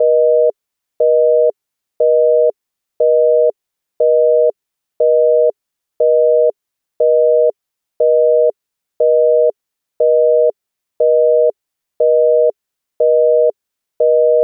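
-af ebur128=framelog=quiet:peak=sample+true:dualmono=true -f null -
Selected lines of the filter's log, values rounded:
Integrated loudness:
  I:         -10.2 LUFS
  Threshold: -20.7 LUFS
Loudness range:
  LRA:         0.0 LU
  Threshold: -31.2 LUFS
  LRA low:   -11.2 LUFS
  LRA high:  -11.2 LUFS
Sample peak:
  Peak:       -4.5 dBFS
True peak:
  Peak:       -4.5 dBFS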